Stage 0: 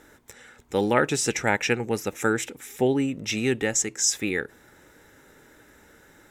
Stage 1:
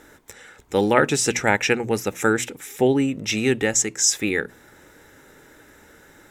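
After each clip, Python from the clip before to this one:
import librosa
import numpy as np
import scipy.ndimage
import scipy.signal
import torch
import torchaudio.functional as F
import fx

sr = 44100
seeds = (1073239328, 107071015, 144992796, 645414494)

y = fx.hum_notches(x, sr, base_hz=60, count=4)
y = y * librosa.db_to_amplitude(4.0)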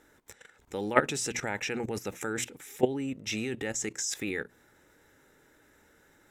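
y = fx.level_steps(x, sr, step_db=15)
y = y * librosa.db_to_amplitude(-2.5)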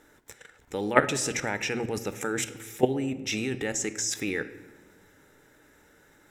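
y = fx.room_shoebox(x, sr, seeds[0], volume_m3=850.0, walls='mixed', distance_m=0.4)
y = y * librosa.db_to_amplitude(3.0)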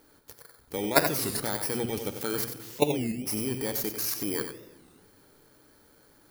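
y = fx.bit_reversed(x, sr, seeds[1], block=16)
y = y + 10.0 ** (-8.0 / 20.0) * np.pad(y, (int(93 * sr / 1000.0), 0))[:len(y)]
y = fx.record_warp(y, sr, rpm=33.33, depth_cents=250.0)
y = y * librosa.db_to_amplitude(-1.0)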